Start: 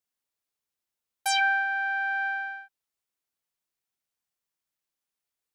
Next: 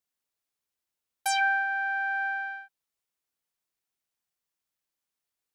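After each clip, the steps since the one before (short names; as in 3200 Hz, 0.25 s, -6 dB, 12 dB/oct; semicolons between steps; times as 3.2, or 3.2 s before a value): dynamic EQ 3500 Hz, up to -6 dB, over -40 dBFS, Q 1.1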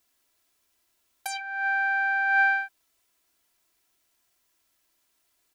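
comb 3 ms, depth 51%; negative-ratio compressor -33 dBFS, ratio -0.5; gain +9 dB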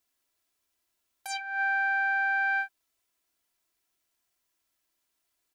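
limiter -24.5 dBFS, peak gain reduction 9.5 dB; upward expander 1.5:1, over -47 dBFS; gain +2 dB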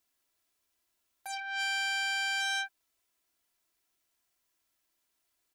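core saturation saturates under 3400 Hz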